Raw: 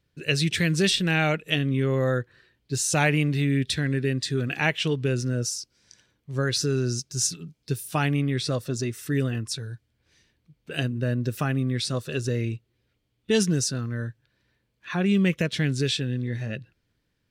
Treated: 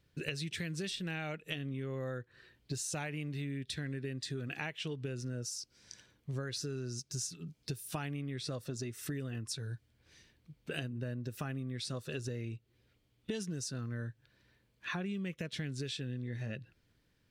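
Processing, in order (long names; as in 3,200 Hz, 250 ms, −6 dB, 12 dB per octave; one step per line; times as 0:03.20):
downward compressor 12 to 1, threshold −37 dBFS, peak gain reduction 20.5 dB
level +1 dB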